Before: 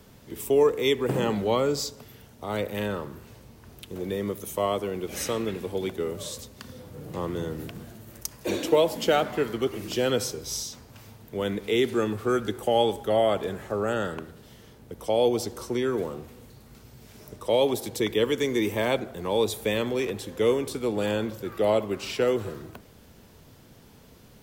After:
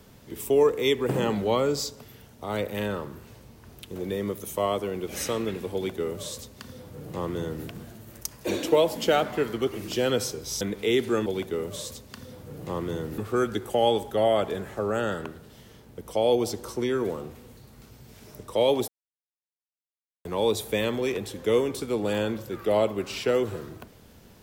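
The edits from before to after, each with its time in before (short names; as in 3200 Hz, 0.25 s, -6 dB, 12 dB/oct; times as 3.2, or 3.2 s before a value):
5.73–7.65 copy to 12.11
10.61–11.46 cut
17.81–19.18 mute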